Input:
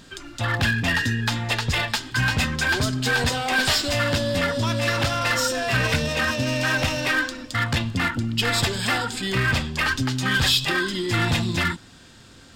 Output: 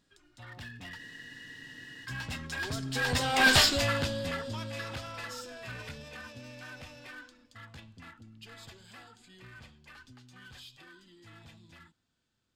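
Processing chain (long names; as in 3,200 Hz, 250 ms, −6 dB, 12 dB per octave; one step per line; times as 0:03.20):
source passing by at 0:03.52, 12 m/s, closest 2.4 metres
frozen spectrum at 0:00.99, 1.06 s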